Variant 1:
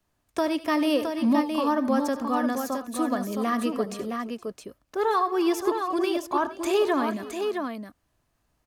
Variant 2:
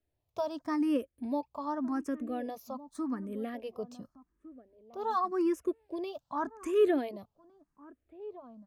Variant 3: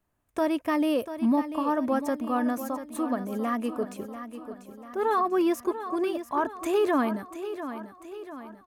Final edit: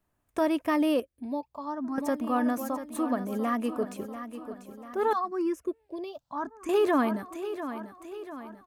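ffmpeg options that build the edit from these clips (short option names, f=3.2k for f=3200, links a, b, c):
-filter_complex "[1:a]asplit=2[a][b];[2:a]asplit=3[c][d][e];[c]atrim=end=1.002[f];[a]atrim=start=0.998:end=1.982[g];[d]atrim=start=1.978:end=5.132[h];[b]atrim=start=5.128:end=6.692[i];[e]atrim=start=6.688[j];[f][g]acrossfade=d=0.004:c1=hsin:c2=hsin[k];[k][h]acrossfade=d=0.004:c1=hsin:c2=hsin[l];[l][i]acrossfade=d=0.004:c1=hsin:c2=hsin[m];[m][j]acrossfade=d=0.004:c1=hsin:c2=hsin"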